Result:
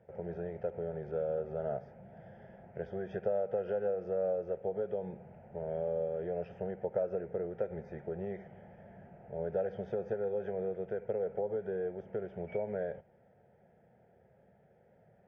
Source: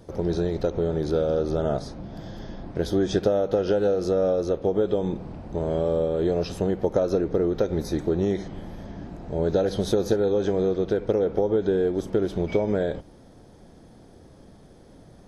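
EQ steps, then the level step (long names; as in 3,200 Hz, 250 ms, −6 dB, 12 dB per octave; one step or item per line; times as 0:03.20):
band-pass filter 150–2,700 Hz
high-frequency loss of the air 190 metres
phaser with its sweep stopped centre 1,100 Hz, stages 6
−8.0 dB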